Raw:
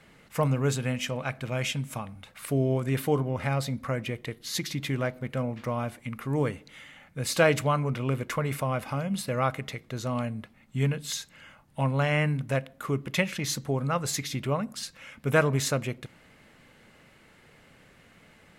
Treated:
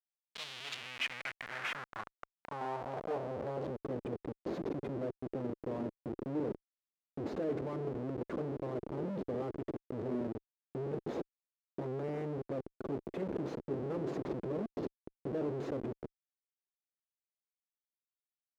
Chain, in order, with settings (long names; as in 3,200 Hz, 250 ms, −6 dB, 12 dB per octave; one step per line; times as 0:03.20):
downsampling to 16,000 Hz
comparator with hysteresis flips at −33 dBFS
band-pass filter sweep 3,500 Hz → 370 Hz, 0:00.46–0:03.93
level +2.5 dB